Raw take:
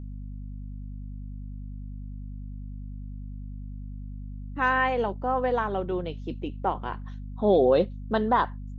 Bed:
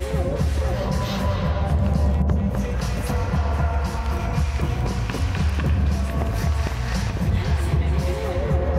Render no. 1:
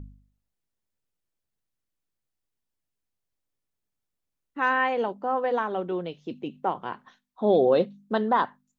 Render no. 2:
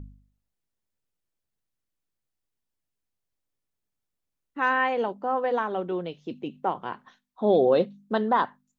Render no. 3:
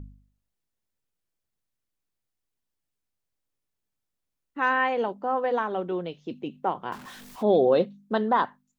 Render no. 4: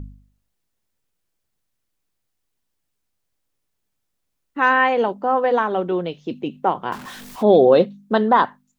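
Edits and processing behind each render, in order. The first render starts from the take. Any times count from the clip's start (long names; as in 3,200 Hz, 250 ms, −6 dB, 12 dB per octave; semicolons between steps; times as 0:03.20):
hum removal 50 Hz, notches 5
no processing that can be heard
0:06.92–0:07.43: converter with a step at zero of −40 dBFS
level +7.5 dB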